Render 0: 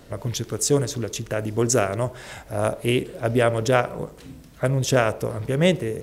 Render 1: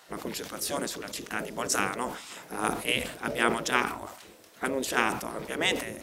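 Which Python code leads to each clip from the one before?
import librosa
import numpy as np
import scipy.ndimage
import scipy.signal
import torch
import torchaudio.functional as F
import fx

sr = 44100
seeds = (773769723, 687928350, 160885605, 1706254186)

y = fx.spec_gate(x, sr, threshold_db=-10, keep='weak')
y = fx.highpass(y, sr, hz=130.0, slope=6)
y = fx.sustainer(y, sr, db_per_s=82.0)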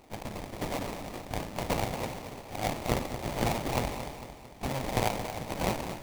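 y = fx.lower_of_two(x, sr, delay_ms=1.2)
y = fx.sample_hold(y, sr, seeds[0], rate_hz=1500.0, jitter_pct=20)
y = fx.echo_feedback(y, sr, ms=225, feedback_pct=52, wet_db=-10.5)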